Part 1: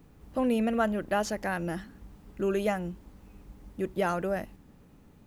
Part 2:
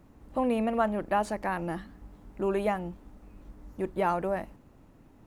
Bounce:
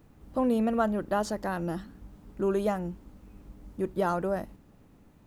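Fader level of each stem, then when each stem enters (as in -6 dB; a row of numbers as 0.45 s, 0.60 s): -3.0 dB, -5.5 dB; 0.00 s, 0.00 s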